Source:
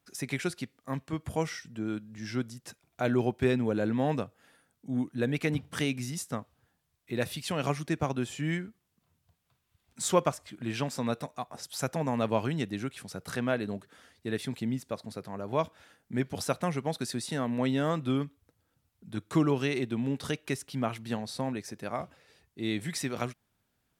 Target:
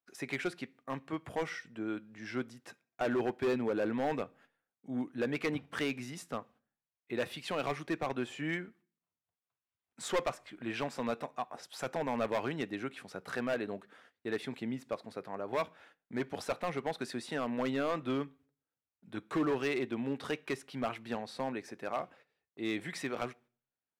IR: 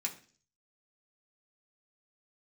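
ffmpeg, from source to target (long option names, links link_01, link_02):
-filter_complex "[0:a]agate=range=-18dB:threshold=-56dB:ratio=16:detection=peak,highpass=frequency=130:poles=1,bass=frequency=250:gain=-9,treble=frequency=4000:gain=-14,asoftclip=type=hard:threshold=-27dB,asplit=2[link_01][link_02];[1:a]atrim=start_sample=2205[link_03];[link_02][link_03]afir=irnorm=-1:irlink=0,volume=-16dB[link_04];[link_01][link_04]amix=inputs=2:normalize=0"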